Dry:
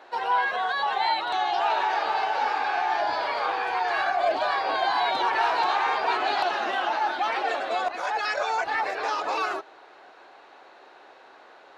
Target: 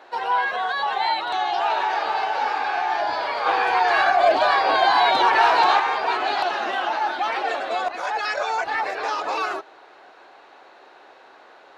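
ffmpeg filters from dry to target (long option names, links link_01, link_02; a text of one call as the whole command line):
ffmpeg -i in.wav -filter_complex "[0:a]asettb=1/sr,asplit=3[link_01][link_02][link_03];[link_01]atrim=end=3.464[link_04];[link_02]atrim=start=3.46:end=5.8,asetpts=PTS-STARTPTS,afade=type=in:duration=0.004:curve=qsin,afade=type=out:start_time=2.336:duration=0.004:curve=qsin,acontrast=29[link_05];[link_03]atrim=start=5.796[link_06];[link_04][link_05]acrossfade=duration=0.004:curve1=hsin:curve2=qsin[link_07];[link_07][link_06]acrossfade=duration=0.004:curve1=qsin:curve2=hsin,volume=2dB" out.wav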